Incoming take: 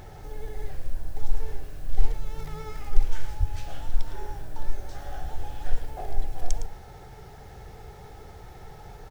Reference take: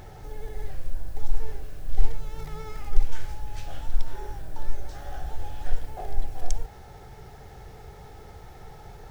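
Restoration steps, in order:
0:03.39–0:03.51: high-pass filter 140 Hz 24 dB per octave
echo removal 110 ms −11 dB

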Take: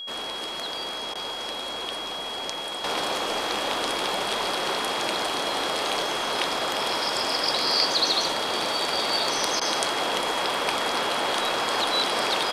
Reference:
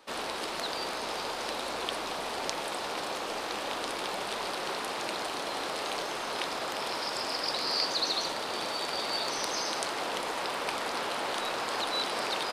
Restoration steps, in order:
notch filter 3,300 Hz, Q 30
repair the gap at 0:01.14/0:09.60, 12 ms
level 0 dB, from 0:02.84 −7 dB

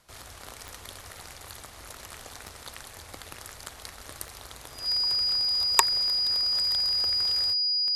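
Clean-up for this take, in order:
click removal
notch filter 4,900 Hz, Q 30

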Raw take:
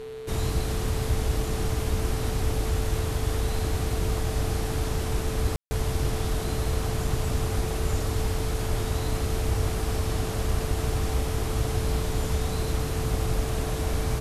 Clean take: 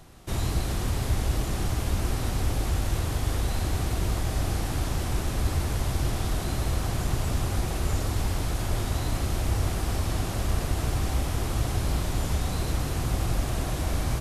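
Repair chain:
hum removal 128.3 Hz, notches 35
notch filter 440 Hz, Q 30
ambience match 0:05.56–0:05.71

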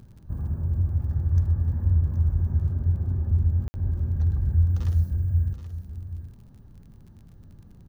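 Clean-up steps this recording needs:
click removal
ambience match 0:03.68–0:03.74
echo removal 776 ms −11.5 dB

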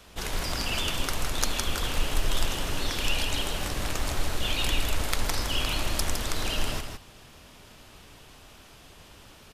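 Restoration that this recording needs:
clipped peaks rebuilt −8.5 dBFS
echo removal 160 ms −6.5 dB

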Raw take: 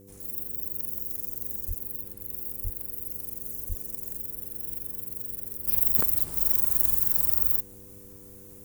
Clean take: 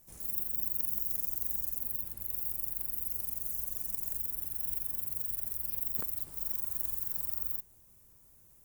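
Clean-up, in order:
hum removal 98.8 Hz, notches 5
0:01.67–0:01.79: high-pass filter 140 Hz 24 dB per octave
0:02.63–0:02.75: high-pass filter 140 Hz 24 dB per octave
0:03.68–0:03.80: high-pass filter 140 Hz 24 dB per octave
0:05.67: level correction −11.5 dB

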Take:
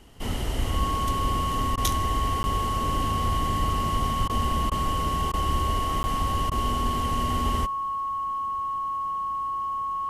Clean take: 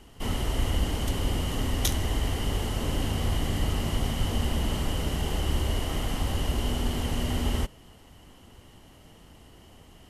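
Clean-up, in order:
notch filter 1,100 Hz, Q 30
repair the gap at 0:02.43/0:06.03, 10 ms
repair the gap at 0:01.76/0:04.28/0:04.70/0:05.32/0:06.50, 14 ms

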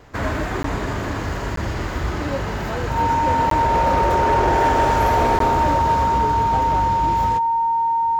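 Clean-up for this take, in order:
clipped peaks rebuilt −11.5 dBFS
notch filter 920 Hz, Q 30
repair the gap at 0:00.63/0:01.56/0:03.50/0:05.39, 13 ms

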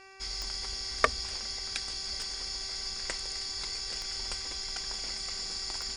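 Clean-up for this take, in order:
click removal
hum removal 385.7 Hz, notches 7

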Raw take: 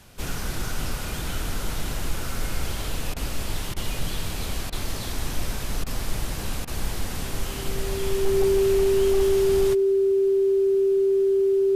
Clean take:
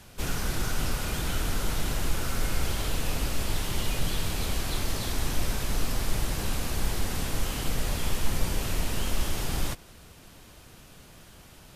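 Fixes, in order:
clipped peaks rebuilt −14 dBFS
notch filter 390 Hz, Q 30
repair the gap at 0:03.14/0:03.74/0:04.70/0:05.84/0:06.65, 23 ms

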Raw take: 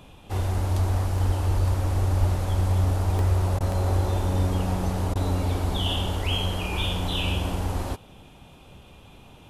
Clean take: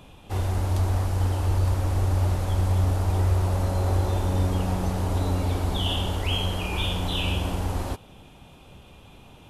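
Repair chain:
high-pass at the plosives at 0:01.25/0:01.55/0:02.19
repair the gap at 0:01.18/0:03.19/0:03.72/0:06.07, 1.4 ms
repair the gap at 0:03.59/0:05.14, 14 ms

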